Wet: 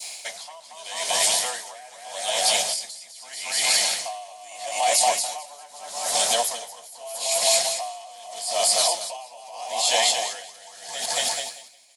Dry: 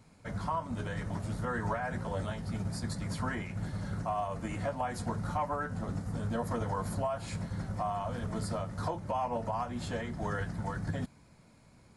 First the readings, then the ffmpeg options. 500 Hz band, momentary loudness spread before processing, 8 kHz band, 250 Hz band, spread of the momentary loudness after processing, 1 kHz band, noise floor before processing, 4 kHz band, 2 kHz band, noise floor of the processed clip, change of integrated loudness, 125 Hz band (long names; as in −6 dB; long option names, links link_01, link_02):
+8.0 dB, 4 LU, +29.0 dB, −15.0 dB, 20 LU, +7.5 dB, −60 dBFS, +27.0 dB, +11.0 dB, −46 dBFS, +13.5 dB, below −20 dB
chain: -filter_complex "[0:a]adynamicequalizer=threshold=0.00316:dfrequency=1600:dqfactor=0.87:tfrequency=1600:tqfactor=0.87:attack=5:release=100:ratio=0.375:range=2.5:mode=cutabove:tftype=bell,aexciter=amount=14.9:drive=6.5:freq=2200,highpass=frequency=700:width_type=q:width=5,aecho=1:1:230|437|623.3|791|941.9:0.631|0.398|0.251|0.158|0.1,asplit=2[link_01][link_02];[link_02]acompressor=threshold=-30dB:ratio=6,volume=2dB[link_03];[link_01][link_03]amix=inputs=2:normalize=0,alimiter=limit=-12.5dB:level=0:latency=1:release=12,aeval=exprs='val(0)*pow(10,-25*(0.5-0.5*cos(2*PI*0.8*n/s))/20)':channel_layout=same,volume=3.5dB"